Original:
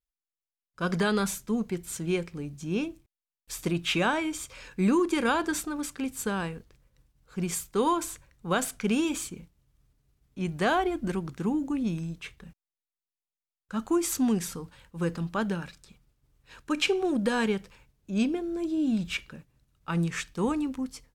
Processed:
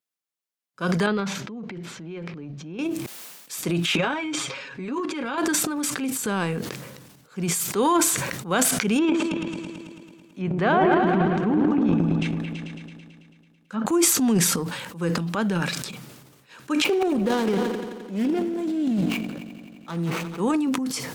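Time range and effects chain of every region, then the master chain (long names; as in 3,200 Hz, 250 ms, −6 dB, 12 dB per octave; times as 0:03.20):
0:01.06–0:02.79: high-frequency loss of the air 230 metres + downward compressor, threshold −37 dBFS
0:03.97–0:05.38: downward compressor 10 to 1, threshold −31 dBFS + low-pass filter 4,300 Hz + comb filter 7.3 ms, depth 76%
0:08.98–0:13.86: treble cut that deepens with the level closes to 2,400 Hz, closed at −28.5 dBFS + echo whose low-pass opens from repeat to repeat 110 ms, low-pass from 750 Hz, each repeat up 2 octaves, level −3 dB
0:16.84–0:20.40: running median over 25 samples + low-shelf EQ 130 Hz −10 dB + echo machine with several playback heads 87 ms, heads all three, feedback 65%, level −19 dB
whole clip: high-pass filter 150 Hz 24 dB per octave; transient designer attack −3 dB, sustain +11 dB; level that may fall only so fast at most 41 dB per second; level +4.5 dB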